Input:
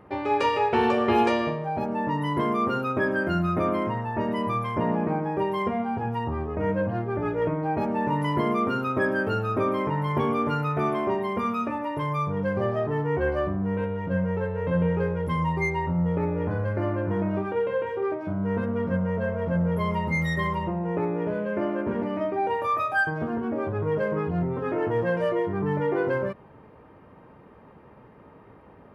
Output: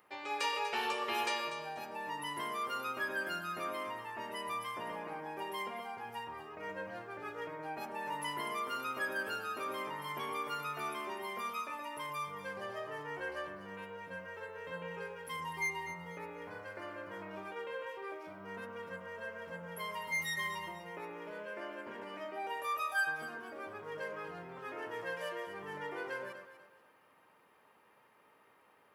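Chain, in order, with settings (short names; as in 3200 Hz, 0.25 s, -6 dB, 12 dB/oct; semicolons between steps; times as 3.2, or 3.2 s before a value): differentiator; on a send: echo with dull and thin repeats by turns 0.122 s, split 1700 Hz, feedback 56%, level -6 dB; on the sum: gain +4.5 dB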